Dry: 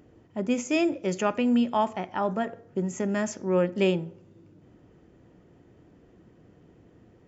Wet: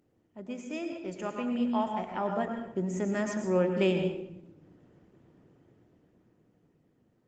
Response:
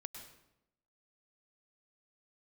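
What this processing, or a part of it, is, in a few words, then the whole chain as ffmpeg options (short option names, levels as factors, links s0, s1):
far-field microphone of a smart speaker: -filter_complex "[1:a]atrim=start_sample=2205[s0];[0:a][s0]afir=irnorm=-1:irlink=0,highpass=95,dynaudnorm=f=210:g=17:m=3.55,volume=0.376" -ar 48000 -c:a libopus -b:a 20k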